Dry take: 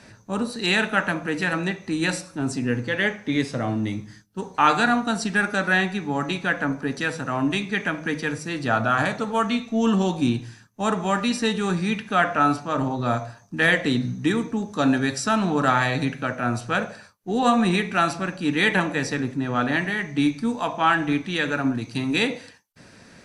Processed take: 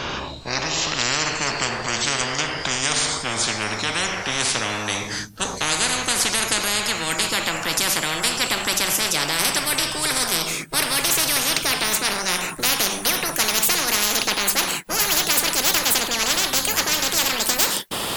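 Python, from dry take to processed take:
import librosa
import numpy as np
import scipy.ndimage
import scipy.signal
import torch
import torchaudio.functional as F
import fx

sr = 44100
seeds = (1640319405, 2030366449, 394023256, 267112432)

y = fx.speed_glide(x, sr, from_pct=61, to_pct=195)
y = fx.spectral_comp(y, sr, ratio=10.0)
y = y * 10.0 ** (2.5 / 20.0)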